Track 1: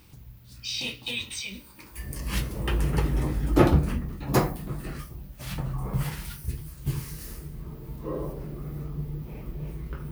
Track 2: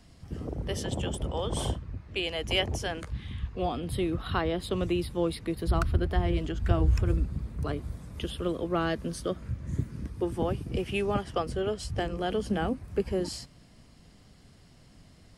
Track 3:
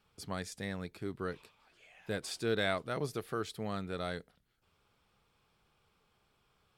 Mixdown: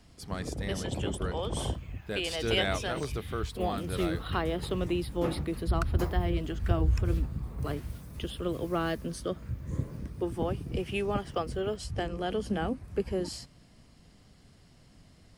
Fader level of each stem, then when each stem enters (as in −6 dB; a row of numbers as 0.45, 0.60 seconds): −15.0, −2.0, +1.0 decibels; 1.65, 0.00, 0.00 seconds